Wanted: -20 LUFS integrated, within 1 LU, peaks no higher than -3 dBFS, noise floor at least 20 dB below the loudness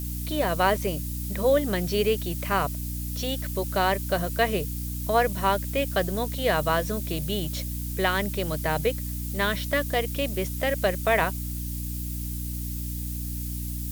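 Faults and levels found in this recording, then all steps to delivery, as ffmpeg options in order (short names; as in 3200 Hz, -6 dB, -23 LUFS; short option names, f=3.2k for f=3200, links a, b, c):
hum 60 Hz; harmonics up to 300 Hz; hum level -30 dBFS; noise floor -32 dBFS; noise floor target -47 dBFS; loudness -27.0 LUFS; peak -8.0 dBFS; loudness target -20.0 LUFS
-> -af "bandreject=f=60:t=h:w=4,bandreject=f=120:t=h:w=4,bandreject=f=180:t=h:w=4,bandreject=f=240:t=h:w=4,bandreject=f=300:t=h:w=4"
-af "afftdn=nr=15:nf=-32"
-af "volume=7dB,alimiter=limit=-3dB:level=0:latency=1"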